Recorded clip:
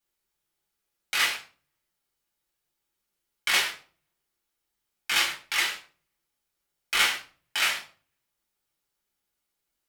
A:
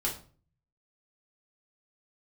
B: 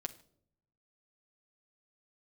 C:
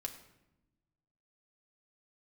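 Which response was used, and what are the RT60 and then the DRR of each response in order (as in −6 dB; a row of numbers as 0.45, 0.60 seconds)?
A; 0.40 s, non-exponential decay, 0.90 s; −4.5, 4.0, 3.0 decibels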